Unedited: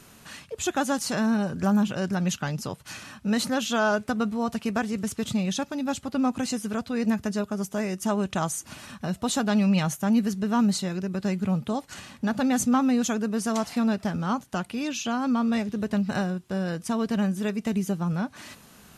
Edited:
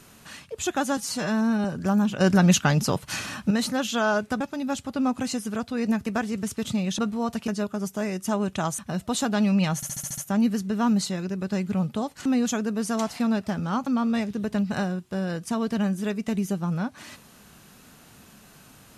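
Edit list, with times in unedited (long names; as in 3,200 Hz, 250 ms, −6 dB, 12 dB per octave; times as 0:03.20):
0:00.97–0:01.42: time-stretch 1.5×
0:01.98–0:03.28: clip gain +8.5 dB
0:04.18–0:04.67: swap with 0:05.59–0:07.25
0:08.56–0:08.93: remove
0:09.90: stutter 0.07 s, 7 plays
0:11.98–0:12.82: remove
0:14.43–0:15.25: remove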